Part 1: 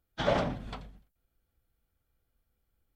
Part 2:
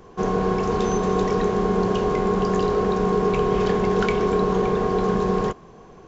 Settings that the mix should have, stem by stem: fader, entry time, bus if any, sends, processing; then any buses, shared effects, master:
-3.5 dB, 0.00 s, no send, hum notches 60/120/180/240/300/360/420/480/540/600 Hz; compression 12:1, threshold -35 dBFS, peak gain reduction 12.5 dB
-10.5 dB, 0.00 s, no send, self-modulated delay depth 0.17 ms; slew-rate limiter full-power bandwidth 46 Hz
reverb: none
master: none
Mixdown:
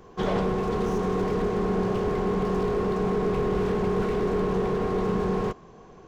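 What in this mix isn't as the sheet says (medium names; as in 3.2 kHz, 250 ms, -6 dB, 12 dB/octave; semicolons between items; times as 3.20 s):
stem 1: missing compression 12:1, threshold -35 dBFS, peak gain reduction 12.5 dB; stem 2 -10.5 dB -> -3.0 dB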